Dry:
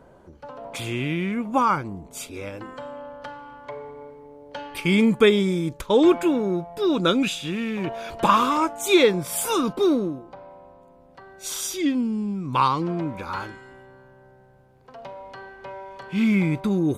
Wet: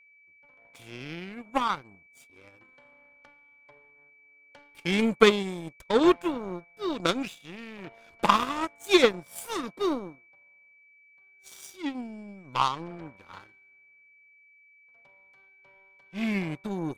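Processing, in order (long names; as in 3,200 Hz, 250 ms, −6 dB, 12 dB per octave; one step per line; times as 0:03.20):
power curve on the samples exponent 2
steady tone 2,300 Hz −59 dBFS
level +3 dB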